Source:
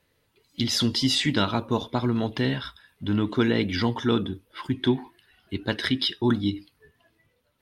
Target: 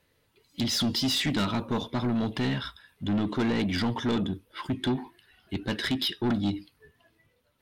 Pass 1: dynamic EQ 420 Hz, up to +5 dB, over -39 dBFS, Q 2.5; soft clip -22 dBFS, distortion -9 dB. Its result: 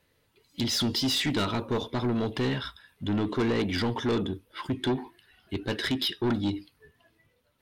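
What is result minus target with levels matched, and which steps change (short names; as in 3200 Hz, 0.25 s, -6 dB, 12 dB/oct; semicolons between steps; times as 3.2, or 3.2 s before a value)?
500 Hz band +3.5 dB
change: dynamic EQ 190 Hz, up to +5 dB, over -39 dBFS, Q 2.5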